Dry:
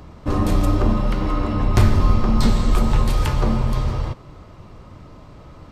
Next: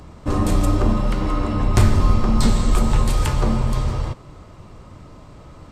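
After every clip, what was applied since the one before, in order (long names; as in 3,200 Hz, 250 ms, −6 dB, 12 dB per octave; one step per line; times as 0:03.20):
parametric band 8,000 Hz +7.5 dB 0.59 octaves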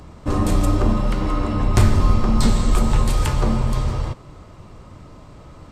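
no processing that can be heard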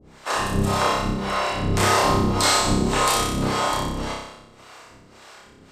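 ceiling on every frequency bin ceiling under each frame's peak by 26 dB
two-band tremolo in antiphase 1.8 Hz, depth 100%, crossover 420 Hz
on a send: flutter between parallel walls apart 5.2 metres, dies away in 0.83 s
on the sum: level −5 dB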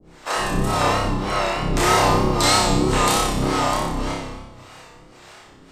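on a send at −3 dB: convolution reverb RT60 1.1 s, pre-delay 3 ms
on the sum: pitch vibrato 3.2 Hz 55 cents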